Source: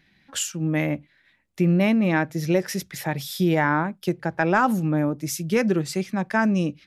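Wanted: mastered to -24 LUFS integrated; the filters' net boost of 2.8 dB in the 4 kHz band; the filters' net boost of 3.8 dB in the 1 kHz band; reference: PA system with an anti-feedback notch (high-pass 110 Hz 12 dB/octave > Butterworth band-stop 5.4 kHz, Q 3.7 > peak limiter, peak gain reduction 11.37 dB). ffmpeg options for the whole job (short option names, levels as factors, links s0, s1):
-af "highpass=110,asuperstop=centerf=5400:order=8:qfactor=3.7,equalizer=f=1000:t=o:g=4.5,equalizer=f=4000:t=o:g=5.5,volume=1.41,alimiter=limit=0.224:level=0:latency=1"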